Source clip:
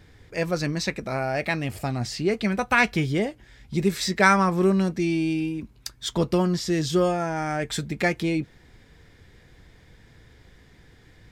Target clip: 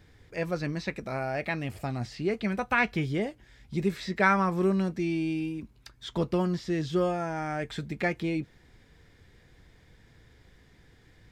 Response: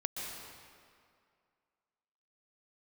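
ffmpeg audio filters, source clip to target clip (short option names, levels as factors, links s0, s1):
-filter_complex "[0:a]acrossover=split=3700[s0][s1];[s1]acompressor=threshold=0.00447:ratio=4:attack=1:release=60[s2];[s0][s2]amix=inputs=2:normalize=0,volume=0.562"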